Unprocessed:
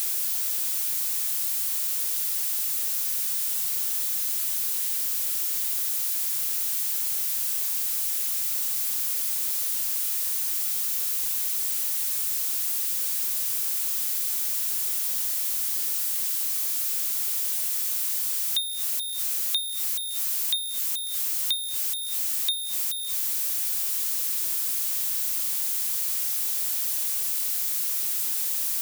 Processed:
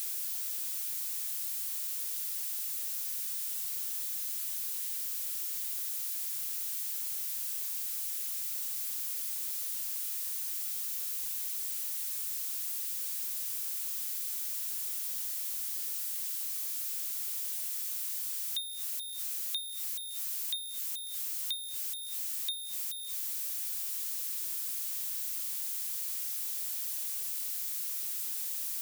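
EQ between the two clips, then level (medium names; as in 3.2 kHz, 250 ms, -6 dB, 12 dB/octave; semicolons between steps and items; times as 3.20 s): peaking EQ 250 Hz -9.5 dB 3 oct; -9.0 dB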